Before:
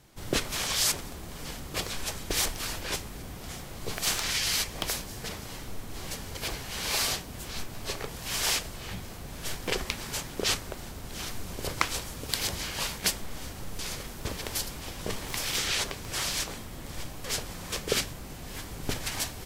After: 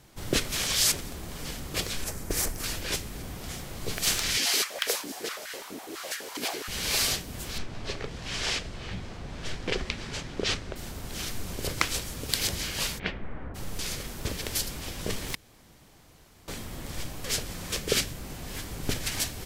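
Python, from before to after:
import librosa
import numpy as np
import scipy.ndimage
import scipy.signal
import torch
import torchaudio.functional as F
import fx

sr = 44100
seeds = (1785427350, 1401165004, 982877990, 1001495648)

y = fx.peak_eq(x, sr, hz=3400.0, db=-12.0, octaves=1.2, at=(2.04, 2.64))
y = fx.filter_held_highpass(y, sr, hz=12.0, low_hz=280.0, high_hz=1600.0, at=(4.37, 6.68))
y = fx.air_absorb(y, sr, metres=110.0, at=(7.58, 10.76))
y = fx.lowpass(y, sr, hz=fx.line((12.98, 3100.0), (13.54, 1500.0)), slope=24, at=(12.98, 13.54), fade=0.02)
y = fx.edit(y, sr, fx.room_tone_fill(start_s=15.35, length_s=1.13), tone=tone)
y = fx.dynamic_eq(y, sr, hz=930.0, q=1.2, threshold_db=-49.0, ratio=4.0, max_db=-6)
y = y * 10.0 ** (2.5 / 20.0)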